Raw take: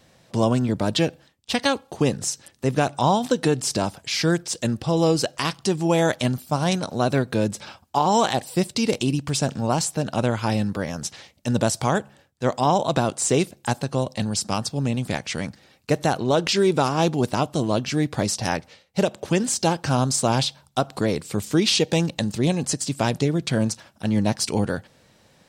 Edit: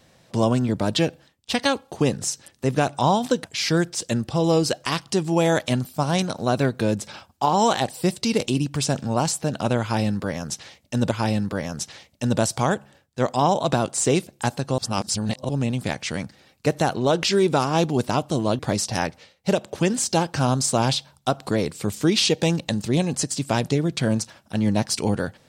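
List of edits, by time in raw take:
0:03.44–0:03.97: remove
0:10.35–0:11.64: repeat, 2 plays
0:14.02–0:14.73: reverse
0:17.83–0:18.09: remove

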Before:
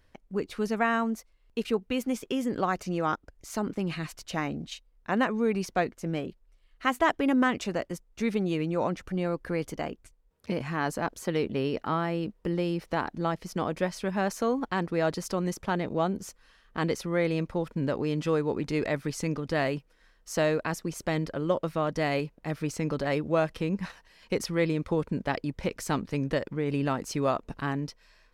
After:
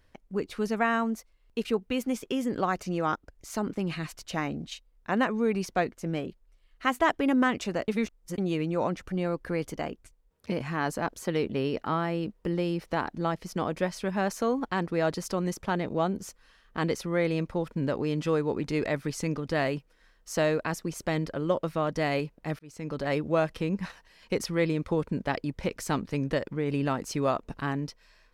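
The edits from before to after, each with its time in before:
0:07.88–0:08.38: reverse
0:22.59–0:23.12: fade in

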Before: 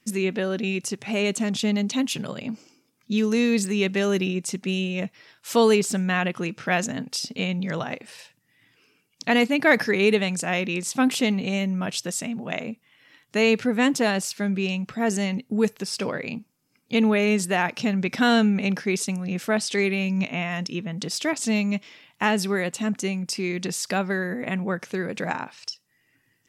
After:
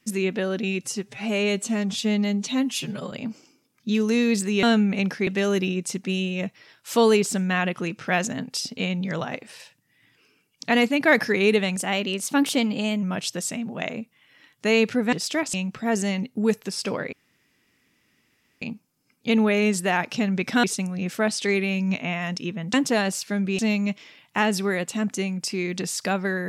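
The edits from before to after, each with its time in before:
0:00.81–0:02.35: time-stretch 1.5×
0:10.35–0:11.73: play speed 109%
0:13.83–0:14.68: swap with 0:21.03–0:21.44
0:16.27: splice in room tone 1.49 s
0:18.29–0:18.93: move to 0:03.86

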